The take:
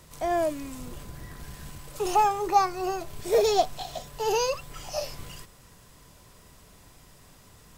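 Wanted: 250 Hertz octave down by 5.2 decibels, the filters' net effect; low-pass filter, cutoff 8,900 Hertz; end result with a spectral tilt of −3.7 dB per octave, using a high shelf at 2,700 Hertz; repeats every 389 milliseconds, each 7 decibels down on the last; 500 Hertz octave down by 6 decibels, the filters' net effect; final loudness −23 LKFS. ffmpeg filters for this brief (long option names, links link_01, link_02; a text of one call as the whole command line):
ffmpeg -i in.wav -af "lowpass=8900,equalizer=frequency=250:width_type=o:gain=-4,equalizer=frequency=500:width_type=o:gain=-6.5,highshelf=frequency=2700:gain=-4,aecho=1:1:389|778|1167|1556|1945:0.447|0.201|0.0905|0.0407|0.0183,volume=7.5dB" out.wav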